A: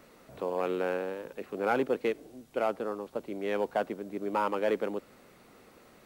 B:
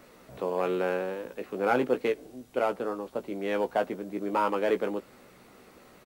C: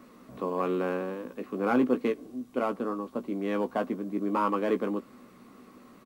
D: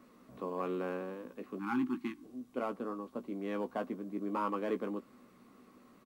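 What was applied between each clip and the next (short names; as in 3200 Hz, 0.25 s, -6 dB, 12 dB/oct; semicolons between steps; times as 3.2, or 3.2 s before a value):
doubler 16 ms -8 dB; gain +2 dB
small resonant body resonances 240/1100 Hz, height 13 dB, ringing for 30 ms; gain -4.5 dB
spectral delete 1.59–2.23, 370–790 Hz; gain -7.5 dB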